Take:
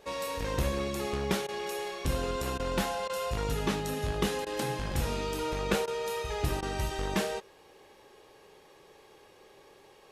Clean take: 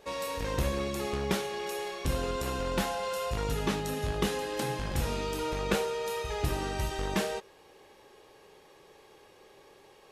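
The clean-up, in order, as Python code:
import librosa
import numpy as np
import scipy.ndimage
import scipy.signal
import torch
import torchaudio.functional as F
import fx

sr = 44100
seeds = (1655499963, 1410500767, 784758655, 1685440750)

y = fx.fix_interpolate(x, sr, at_s=(1.47, 2.58, 3.08, 4.45, 5.86, 6.61), length_ms=14.0)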